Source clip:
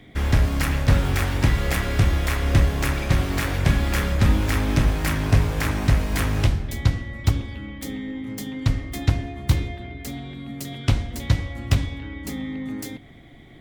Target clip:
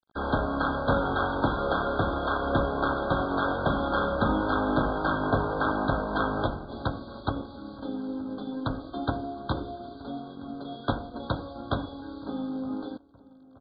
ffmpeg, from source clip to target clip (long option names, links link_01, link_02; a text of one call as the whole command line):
ffmpeg -i in.wav -filter_complex "[0:a]acrossover=split=240|3700[link_01][link_02][link_03];[link_03]acrusher=bits=4:dc=4:mix=0:aa=0.000001[link_04];[link_01][link_02][link_04]amix=inputs=3:normalize=0,acrossover=split=260 3100:gain=0.0891 1 0.2[link_05][link_06][link_07];[link_05][link_06][link_07]amix=inputs=3:normalize=0,afftdn=noise_reduction=16:noise_floor=-47,equalizer=frequency=370:width_type=o:width=0.4:gain=-4.5,aresample=11025,aeval=exprs='sgn(val(0))*max(abs(val(0))-0.00282,0)':channel_layout=same,aresample=44100,asplit=2[link_08][link_09];[link_09]adelay=920,lowpass=frequency=1300:poles=1,volume=-21dB,asplit=2[link_10][link_11];[link_11]adelay=920,lowpass=frequency=1300:poles=1,volume=0.48,asplit=2[link_12][link_13];[link_13]adelay=920,lowpass=frequency=1300:poles=1,volume=0.48[link_14];[link_08][link_10][link_12][link_14]amix=inputs=4:normalize=0,afftfilt=real='re*eq(mod(floor(b*sr/1024/1600),2),0)':imag='im*eq(mod(floor(b*sr/1024/1600),2),0)':win_size=1024:overlap=0.75,volume=5.5dB" out.wav